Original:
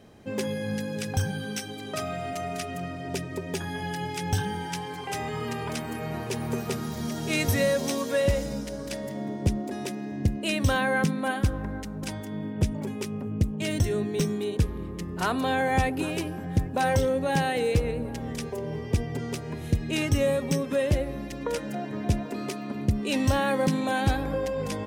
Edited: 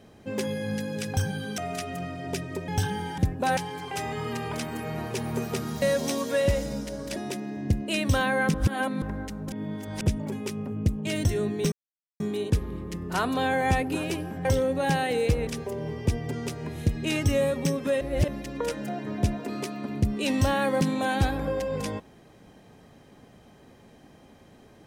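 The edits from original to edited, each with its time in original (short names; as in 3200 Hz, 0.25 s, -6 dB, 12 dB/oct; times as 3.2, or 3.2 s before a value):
1.58–2.39 cut
3.49–4.23 cut
6.98–7.62 cut
8.96–9.71 cut
11.09–11.57 reverse
12.07–12.56 reverse
14.27 insert silence 0.48 s
16.52–16.91 move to 4.73
17.93–18.33 cut
20.87–21.14 reverse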